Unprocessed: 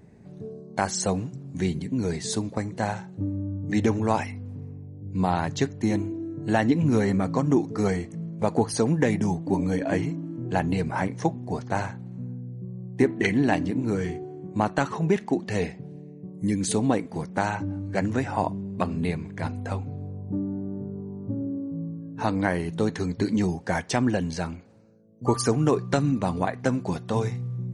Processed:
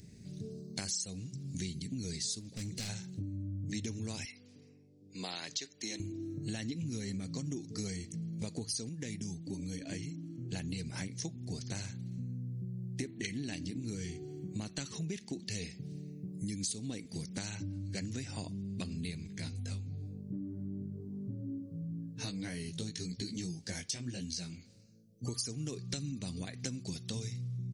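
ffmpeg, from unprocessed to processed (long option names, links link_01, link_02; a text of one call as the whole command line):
ffmpeg -i in.wav -filter_complex "[0:a]asplit=3[link_01][link_02][link_03];[link_01]afade=type=out:start_time=2.39:duration=0.02[link_04];[link_02]asoftclip=type=hard:threshold=-29.5dB,afade=type=in:start_time=2.39:duration=0.02,afade=type=out:start_time=2.88:duration=0.02[link_05];[link_03]afade=type=in:start_time=2.88:duration=0.02[link_06];[link_04][link_05][link_06]amix=inputs=3:normalize=0,asettb=1/sr,asplit=3[link_07][link_08][link_09];[link_07]atrim=end=4.254[link_10];[link_08]atrim=start=4.25:end=6,asetpts=PTS-STARTPTS,afade=type=in:duration=0.004:curve=qsin,afade=type=out:start_time=1.746:duration=0.004:curve=qsin,highpass=490,lowpass=6400[link_11];[link_09]atrim=start=5.996[link_12];[link_10][link_11]acrossfade=duration=0.004:curve1=hsin:curve2=qsin[link_13];[link_13][link_12]acrossfade=duration=0.004:curve1=qsin:curve2=hsin,asettb=1/sr,asplit=3[link_14][link_15][link_16];[link_14]atrim=end=19.274[link_17];[link_15]atrim=start=19.27:end=25.24,asetpts=PTS-STARTPTS,afade=type=in:duration=0.004:curve=qsin,afade=type=out:start_time=5.966:duration=0.004:curve=qsin,flanger=delay=15.5:depth=4.6:speed=1[link_18];[link_16]atrim=start=25.236[link_19];[link_17][link_18]acrossfade=duration=0.004:curve1=hsin:curve2=qsin[link_20];[link_20][link_19]acrossfade=duration=0.004:curve1=qsin:curve2=hsin,asplit=3[link_21][link_22][link_23];[link_21]atrim=end=8.892[link_24];[link_22]atrim=start=8.888:end=10.532,asetpts=PTS-STARTPTS,volume=-7dB[link_25];[link_23]atrim=start=10.528[link_26];[link_24][link_25]acrossfade=duration=0.004:curve1=hsin:curve2=hsin[link_27];[link_27][link_26]acrossfade=duration=0.004:curve1=hsin:curve2=hsin,firequalizer=gain_entry='entry(110,0);entry(870,-20);entry(2200,0);entry(4800,14);entry(7900,10)':delay=0.05:min_phase=1,acompressor=threshold=-37dB:ratio=5" out.wav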